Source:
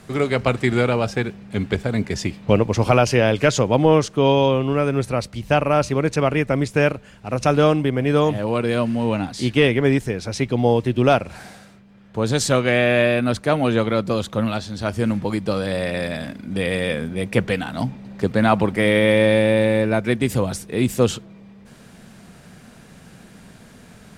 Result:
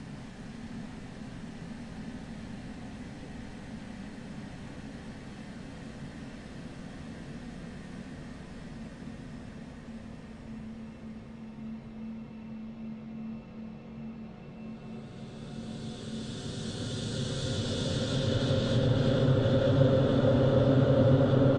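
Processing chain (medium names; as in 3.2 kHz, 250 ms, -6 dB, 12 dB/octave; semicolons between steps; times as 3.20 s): reverse the whole clip; bass shelf 160 Hz +8.5 dB; compression, threshold -17 dBFS, peak gain reduction 10 dB; Paulstretch 21×, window 0.50 s, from 2.02 s; low-pass that closes with the level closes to 1.8 kHz, closed at -19 dBFS; wide varispeed 1.12×; distance through air 56 m; feedback delay 554 ms, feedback 44%, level -15.5 dB; on a send at -17 dB: reverberation RT60 0.90 s, pre-delay 48 ms; on the sum: trim -1.5 dB; AAC 32 kbps 22.05 kHz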